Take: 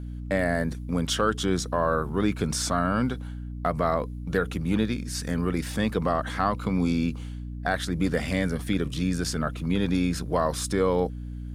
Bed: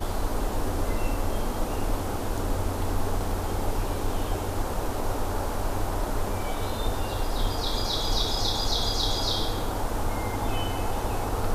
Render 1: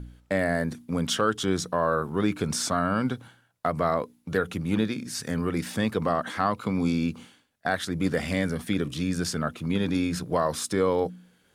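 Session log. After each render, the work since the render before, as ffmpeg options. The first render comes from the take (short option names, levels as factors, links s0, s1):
-af "bandreject=f=60:t=h:w=4,bandreject=f=120:t=h:w=4,bandreject=f=180:t=h:w=4,bandreject=f=240:t=h:w=4,bandreject=f=300:t=h:w=4"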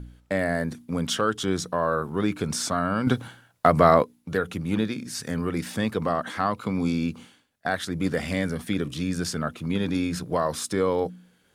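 -filter_complex "[0:a]asplit=3[s0][s1][s2];[s0]atrim=end=3.072[s3];[s1]atrim=start=3.068:end=4.032,asetpts=PTS-STARTPTS,volume=2.66[s4];[s2]atrim=start=4.028[s5];[s3][s4]acrossfade=d=0.004:c1=hsin:c2=hsin[s6];[s6][s5]acrossfade=d=0.004:c1=hsin:c2=hsin"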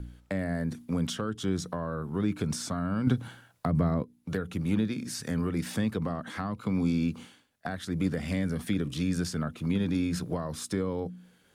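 -filter_complex "[0:a]acrossover=split=270[s0][s1];[s1]acompressor=threshold=0.02:ratio=8[s2];[s0][s2]amix=inputs=2:normalize=0"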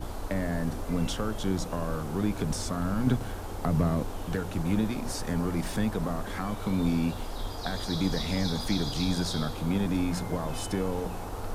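-filter_complex "[1:a]volume=0.376[s0];[0:a][s0]amix=inputs=2:normalize=0"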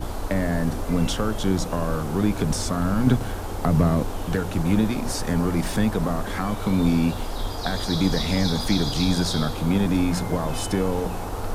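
-af "volume=2.11"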